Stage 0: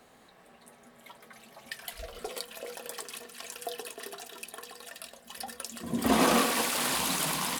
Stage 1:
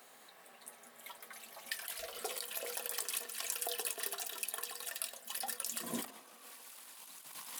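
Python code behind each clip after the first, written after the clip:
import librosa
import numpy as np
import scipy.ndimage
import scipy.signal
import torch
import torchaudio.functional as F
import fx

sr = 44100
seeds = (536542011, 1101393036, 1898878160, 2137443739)

y = fx.highpass(x, sr, hz=730.0, slope=6)
y = fx.high_shelf(y, sr, hz=9500.0, db=11.5)
y = fx.over_compress(y, sr, threshold_db=-36.0, ratio=-0.5)
y = y * librosa.db_to_amplitude(-5.0)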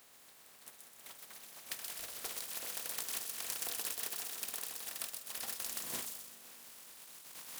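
y = fx.spec_flatten(x, sr, power=0.33)
y = fx.echo_wet_highpass(y, sr, ms=127, feedback_pct=46, hz=4400.0, wet_db=-3)
y = fx.rev_spring(y, sr, rt60_s=3.6, pass_ms=(39, 44), chirp_ms=60, drr_db=13.0)
y = y * librosa.db_to_amplitude(-2.0)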